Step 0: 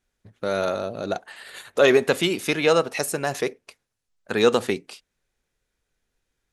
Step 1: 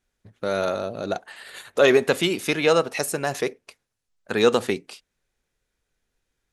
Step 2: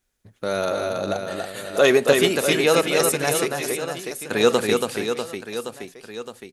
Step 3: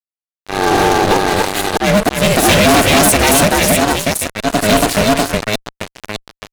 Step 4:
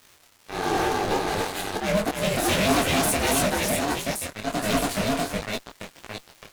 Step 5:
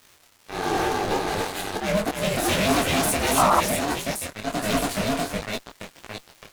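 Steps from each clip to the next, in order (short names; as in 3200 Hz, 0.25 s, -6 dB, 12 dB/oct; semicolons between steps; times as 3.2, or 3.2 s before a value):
nothing audible
high shelf 7700 Hz +10.5 dB; on a send: reverse bouncing-ball echo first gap 0.28 s, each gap 1.3×, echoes 5
auto swell 0.397 s; ring modulator 210 Hz; fuzz box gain 31 dB, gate -37 dBFS; gain +6.5 dB
crackle 390/s -26 dBFS; detuned doubles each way 51 cents; gain -8.5 dB
painted sound noise, 3.37–3.61, 580–1400 Hz -19 dBFS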